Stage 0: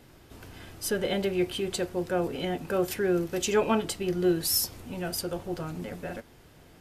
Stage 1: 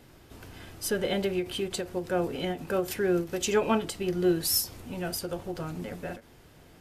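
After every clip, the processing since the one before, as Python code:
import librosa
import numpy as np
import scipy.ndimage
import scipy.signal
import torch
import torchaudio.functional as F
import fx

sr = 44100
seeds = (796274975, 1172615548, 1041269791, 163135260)

y = fx.end_taper(x, sr, db_per_s=200.0)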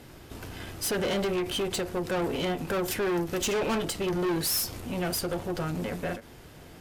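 y = fx.tube_stage(x, sr, drive_db=33.0, bias=0.5)
y = y * 10.0 ** (8.0 / 20.0)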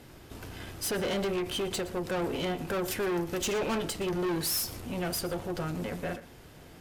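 y = x + 10.0 ** (-18.0 / 20.0) * np.pad(x, (int(118 * sr / 1000.0), 0))[:len(x)]
y = y * 10.0 ** (-2.5 / 20.0)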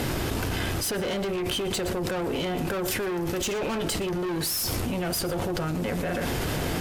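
y = fx.env_flatten(x, sr, amount_pct=100)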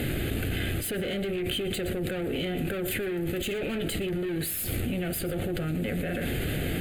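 y = fx.fixed_phaser(x, sr, hz=2400.0, stages=4)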